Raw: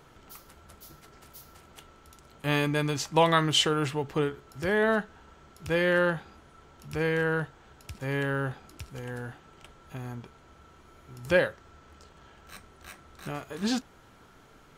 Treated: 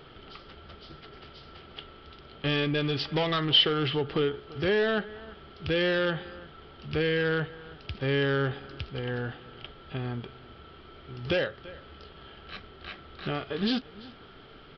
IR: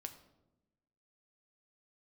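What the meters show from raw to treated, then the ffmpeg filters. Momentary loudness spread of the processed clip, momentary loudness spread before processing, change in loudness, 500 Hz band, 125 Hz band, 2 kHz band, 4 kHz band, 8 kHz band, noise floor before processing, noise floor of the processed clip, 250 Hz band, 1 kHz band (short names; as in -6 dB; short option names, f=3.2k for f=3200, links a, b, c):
22 LU, 20 LU, -0.5 dB, -0.5 dB, +0.5 dB, -1.5 dB, +4.5 dB, under -20 dB, -56 dBFS, -51 dBFS, 0.0 dB, -5.0 dB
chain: -af "equalizer=f=1.2k:t=o:w=0.23:g=4,acompressor=threshold=-29dB:ratio=2.5,aecho=1:1:338:0.0891,aresample=11025,asoftclip=type=hard:threshold=-27dB,aresample=44100,equalizer=f=400:t=o:w=0.33:g=5,equalizer=f=1k:t=o:w=0.33:g=-8,equalizer=f=3.15k:t=o:w=0.33:g=9,volume=4.5dB"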